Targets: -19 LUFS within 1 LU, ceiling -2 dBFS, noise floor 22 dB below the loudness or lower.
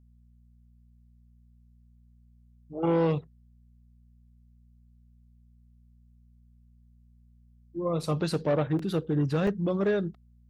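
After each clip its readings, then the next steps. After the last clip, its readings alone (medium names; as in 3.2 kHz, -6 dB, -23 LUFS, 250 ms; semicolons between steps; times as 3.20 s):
dropouts 3; longest dropout 3.4 ms; hum 60 Hz; highest harmonic 240 Hz; hum level -56 dBFS; loudness -28.5 LUFS; peak level -15.5 dBFS; loudness target -19.0 LUFS
-> interpolate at 8.03/8.79/9.47 s, 3.4 ms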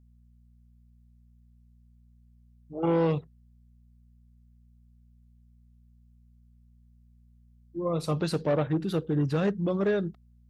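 dropouts 0; hum 60 Hz; highest harmonic 240 Hz; hum level -56 dBFS
-> de-hum 60 Hz, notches 4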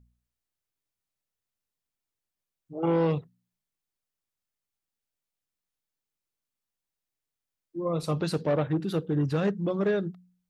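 hum not found; loudness -28.5 LUFS; peak level -15.5 dBFS; loudness target -19.0 LUFS
-> trim +9.5 dB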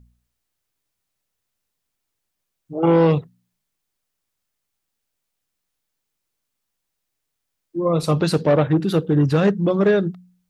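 loudness -19.0 LUFS; peak level -6.0 dBFS; noise floor -79 dBFS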